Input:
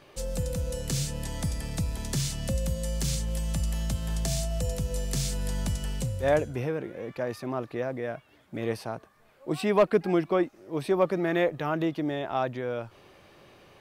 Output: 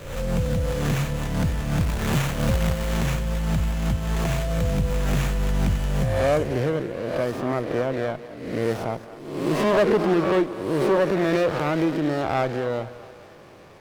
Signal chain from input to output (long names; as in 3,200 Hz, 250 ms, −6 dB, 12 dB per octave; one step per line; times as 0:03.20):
peak hold with a rise ahead of every peak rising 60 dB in 0.86 s
in parallel at −2.5 dB: brickwall limiter −17.5 dBFS, peak gain reduction 10 dB
on the sum: hard clipping −14.5 dBFS, distortion −18 dB
0:01.80–0:02.97: log-companded quantiser 4 bits
echo with a time of its own for lows and highs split 440 Hz, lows 101 ms, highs 223 ms, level −15 dB
windowed peak hold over 9 samples